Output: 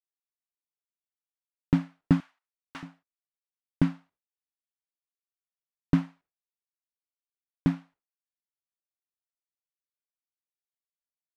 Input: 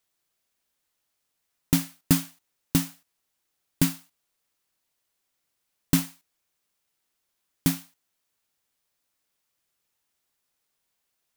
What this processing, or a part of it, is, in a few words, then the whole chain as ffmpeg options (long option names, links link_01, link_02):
hearing-loss simulation: -filter_complex "[0:a]asettb=1/sr,asplit=3[link_01][link_02][link_03];[link_01]atrim=end=2.204[link_04];[link_02]atrim=start=2.2:end=2.83,asetpts=PTS-STARTPTS,afade=type=in:duration=0.004:curve=qsin,afade=type=out:start_time=0.626:duration=0.004:curve=qsin,highpass=1000[link_05];[link_03]atrim=start=2.826[link_06];[link_04][link_05]acrossfade=duration=0.004:curve1=hsin:curve2=qsin[link_07];[link_07][link_06]acrossfade=duration=0.004:curve1=qsin:curve2=hsin,lowpass=1500,agate=range=-33dB:threshold=-53dB:ratio=3:detection=peak"